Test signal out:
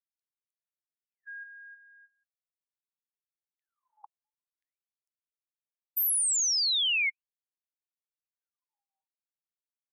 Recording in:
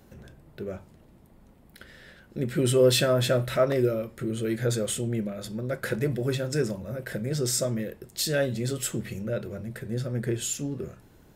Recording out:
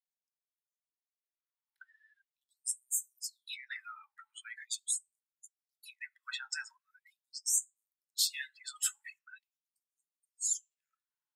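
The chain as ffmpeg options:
ffmpeg -i in.wav -af "afftdn=noise_reduction=35:noise_floor=-37,afftfilt=real='re*gte(b*sr/1024,780*pow(6300/780,0.5+0.5*sin(2*PI*0.42*pts/sr)))':imag='im*gte(b*sr/1024,780*pow(6300/780,0.5+0.5*sin(2*PI*0.42*pts/sr)))':win_size=1024:overlap=0.75" out.wav

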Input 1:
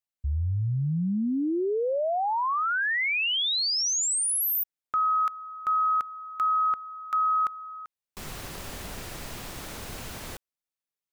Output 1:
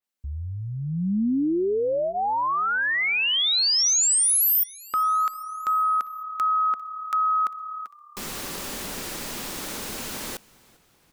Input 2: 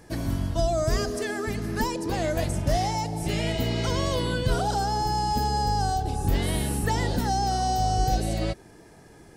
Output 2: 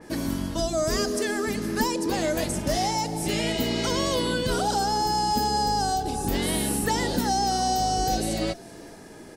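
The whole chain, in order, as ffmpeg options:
ffmpeg -i in.wav -filter_complex "[0:a]lowshelf=frequency=160:width_type=q:width=1.5:gain=-8,bandreject=frequency=690:width=12,asplit=2[link_01][link_02];[link_02]acompressor=threshold=-35dB:ratio=6:attack=1.9:release=448:knee=1:detection=peak,volume=-1dB[link_03];[link_01][link_03]amix=inputs=2:normalize=0,asplit=5[link_04][link_05][link_06][link_07][link_08];[link_05]adelay=398,afreqshift=-36,volume=-24dB[link_09];[link_06]adelay=796,afreqshift=-72,volume=-28.7dB[link_10];[link_07]adelay=1194,afreqshift=-108,volume=-33.5dB[link_11];[link_08]adelay=1592,afreqshift=-144,volume=-38.2dB[link_12];[link_04][link_09][link_10][link_11][link_12]amix=inputs=5:normalize=0,adynamicequalizer=threshold=0.00708:dfrequency=3500:dqfactor=0.7:tfrequency=3500:tqfactor=0.7:attack=5:release=100:ratio=0.375:range=2:mode=boostabove:tftype=highshelf" out.wav

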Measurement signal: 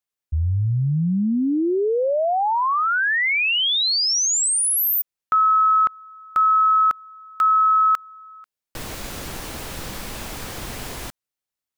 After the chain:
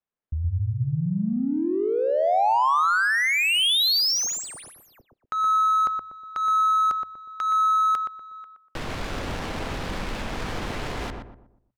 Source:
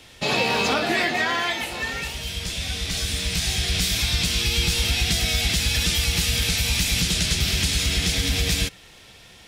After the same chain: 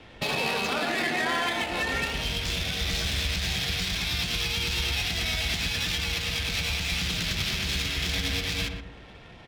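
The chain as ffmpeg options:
ffmpeg -i in.wav -filter_complex "[0:a]bandreject=frequency=60:width_type=h:width=6,bandreject=frequency=120:width_type=h:width=6,acrossover=split=860|4400[link_01][link_02][link_03];[link_01]acompressor=threshold=-32dB:ratio=3[link_04];[link_02]acompressor=threshold=-26dB:ratio=5[link_05];[link_03]acompressor=threshold=-31dB:ratio=8[link_06];[link_04][link_05][link_06]amix=inputs=3:normalize=0,alimiter=limit=-21dB:level=0:latency=1:release=157,adynamicsmooth=sensitivity=7.5:basefreq=1800,asplit=2[link_07][link_08];[link_08]adelay=121,lowpass=frequency=1100:poles=1,volume=-3dB,asplit=2[link_09][link_10];[link_10]adelay=121,lowpass=frequency=1100:poles=1,volume=0.39,asplit=2[link_11][link_12];[link_12]adelay=121,lowpass=frequency=1100:poles=1,volume=0.39,asplit=2[link_13][link_14];[link_14]adelay=121,lowpass=frequency=1100:poles=1,volume=0.39,asplit=2[link_15][link_16];[link_16]adelay=121,lowpass=frequency=1100:poles=1,volume=0.39[link_17];[link_09][link_11][link_13][link_15][link_17]amix=inputs=5:normalize=0[link_18];[link_07][link_18]amix=inputs=2:normalize=0,volume=3dB" out.wav

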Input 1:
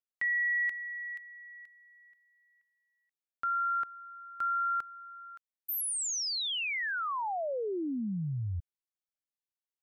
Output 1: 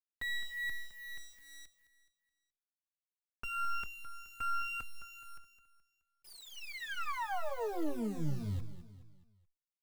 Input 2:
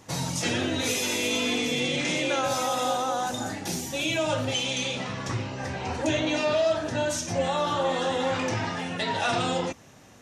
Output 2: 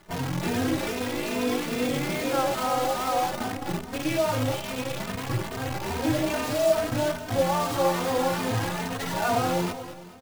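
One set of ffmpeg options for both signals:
ffmpeg -i in.wav -filter_complex "[0:a]lowpass=1400,bandreject=frequency=580:width=16,acrusher=bits=6:dc=4:mix=0:aa=0.000001,aecho=1:1:212|424|636|848:0.251|0.111|0.0486|0.0214,asplit=2[link_01][link_02];[link_02]adelay=3,afreqshift=2.4[link_03];[link_01][link_03]amix=inputs=2:normalize=1,volume=4.5dB" out.wav

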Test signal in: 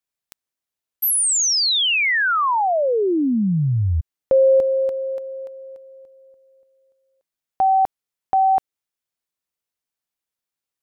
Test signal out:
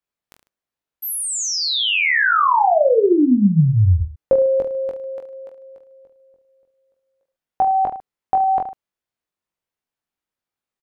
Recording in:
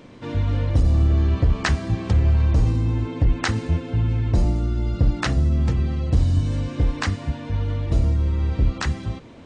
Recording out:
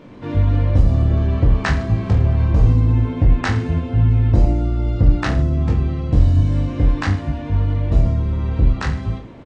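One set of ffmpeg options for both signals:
ffmpeg -i in.wav -filter_complex "[0:a]highshelf=frequency=3300:gain=-11.5,asplit=2[link_01][link_02];[link_02]aecho=0:1:20|44|72.8|107.4|148.8:0.631|0.398|0.251|0.158|0.1[link_03];[link_01][link_03]amix=inputs=2:normalize=0,volume=2.5dB" out.wav

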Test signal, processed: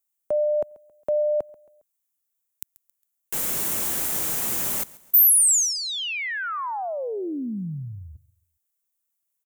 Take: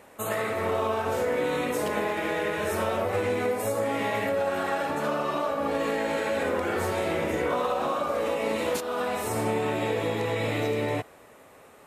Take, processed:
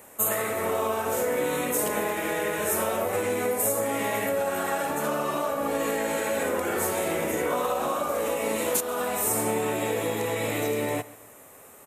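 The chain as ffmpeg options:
ffmpeg -i in.wav -filter_complex "[0:a]acrossover=split=120[link_01][link_02];[link_01]acompressor=threshold=-52dB:ratio=6[link_03];[link_02]aexciter=amount=4.7:drive=4:freq=6500[link_04];[link_03][link_04]amix=inputs=2:normalize=0,aecho=1:1:136|272|408:0.0891|0.0365|0.015" out.wav

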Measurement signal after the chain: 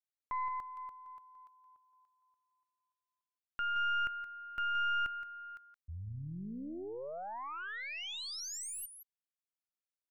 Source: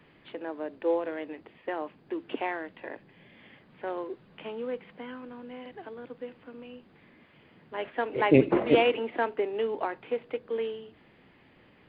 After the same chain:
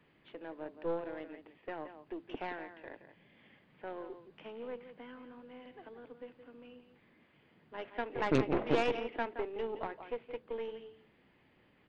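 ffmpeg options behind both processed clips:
ffmpeg -i in.wav -af "aecho=1:1:171:0.299,aeval=exprs='0.473*(cos(1*acos(clip(val(0)/0.473,-1,1)))-cos(1*PI/2))+0.0531*(cos(4*acos(clip(val(0)/0.473,-1,1)))-cos(4*PI/2))+0.0944*(cos(6*acos(clip(val(0)/0.473,-1,1)))-cos(6*PI/2))':channel_layout=same,volume=-9dB" out.wav

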